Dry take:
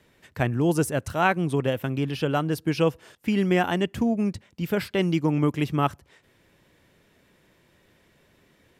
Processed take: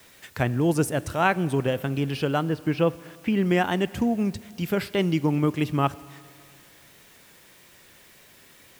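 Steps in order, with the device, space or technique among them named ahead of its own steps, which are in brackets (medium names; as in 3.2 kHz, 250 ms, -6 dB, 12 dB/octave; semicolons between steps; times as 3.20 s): 2.49–3.46 s: low-pass 2.8 kHz 12 dB/octave; noise-reduction cassette on a plain deck (tape noise reduction on one side only encoder only; wow and flutter; white noise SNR 30 dB); Schroeder reverb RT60 2.3 s, combs from 29 ms, DRR 18.5 dB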